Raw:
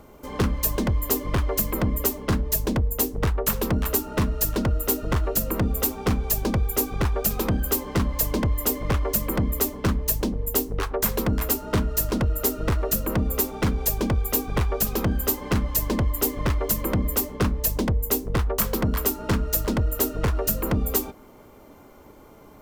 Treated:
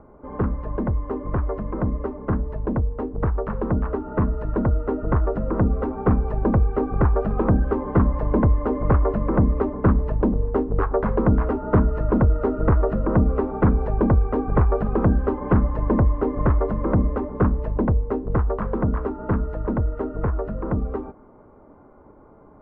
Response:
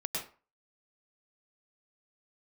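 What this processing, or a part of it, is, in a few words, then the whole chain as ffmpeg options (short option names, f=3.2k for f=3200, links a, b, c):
action camera in a waterproof case: -af "lowpass=f=1.4k:w=0.5412,lowpass=f=1.4k:w=1.3066,dynaudnorm=f=330:g=31:m=6dB" -ar 24000 -c:a aac -b:a 64k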